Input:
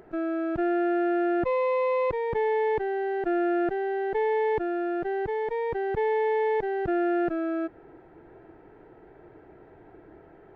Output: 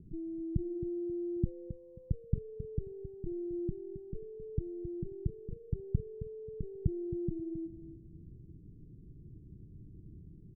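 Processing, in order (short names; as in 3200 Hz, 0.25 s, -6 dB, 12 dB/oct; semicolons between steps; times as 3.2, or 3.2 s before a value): inverse Chebyshev low-pass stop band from 870 Hz, stop band 70 dB; on a send: feedback echo 0.268 s, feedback 26%, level -11.5 dB; on the sum: gain +9 dB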